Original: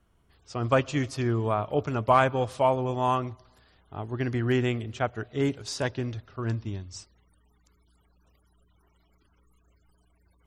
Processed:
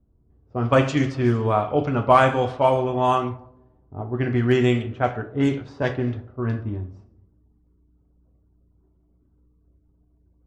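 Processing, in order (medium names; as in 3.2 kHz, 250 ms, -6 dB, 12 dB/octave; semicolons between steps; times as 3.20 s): two-slope reverb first 0.48 s, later 1.6 s, DRR 4 dB; level-controlled noise filter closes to 370 Hz, open at -18 dBFS; trim +4 dB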